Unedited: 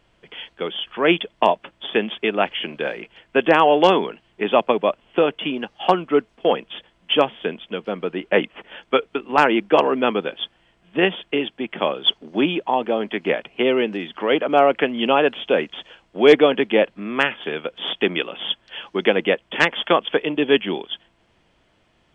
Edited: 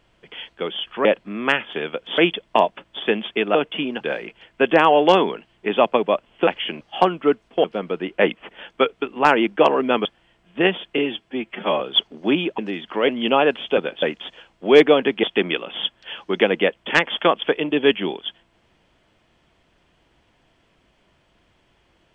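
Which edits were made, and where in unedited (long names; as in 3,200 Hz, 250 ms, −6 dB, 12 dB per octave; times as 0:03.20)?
0:02.42–0:02.76: swap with 0:05.22–0:05.68
0:06.51–0:07.77: remove
0:10.18–0:10.43: move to 0:15.55
0:11.36–0:11.91: time-stretch 1.5×
0:12.69–0:13.85: remove
0:14.35–0:14.86: remove
0:16.76–0:17.89: move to 0:01.05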